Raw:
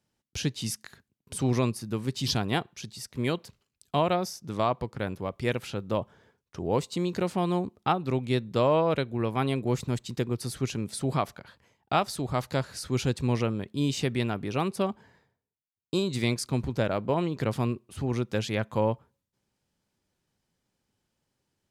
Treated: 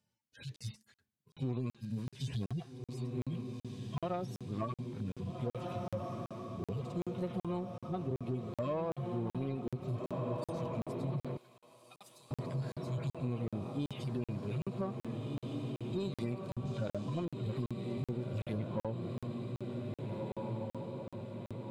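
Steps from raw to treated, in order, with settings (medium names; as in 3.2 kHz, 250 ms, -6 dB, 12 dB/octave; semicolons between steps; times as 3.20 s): harmonic-percussive separation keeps harmonic; on a send: echo that smears into a reverb 1685 ms, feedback 62%, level -7 dB; on the sum: compression 6:1, threshold -28 dBFS, peak gain reduction 8.5 dB; 11.37–12.31 s: pre-emphasis filter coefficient 0.97; in parallel at -3 dB: saturation -32 dBFS, distortion -11 dB; 16.65–17.25 s: on the sum: peaking EQ 6.1 kHz +12 dB 1.1 oct; crackling interface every 0.38 s, samples 2048, zero, from 0.56 s; trim -7 dB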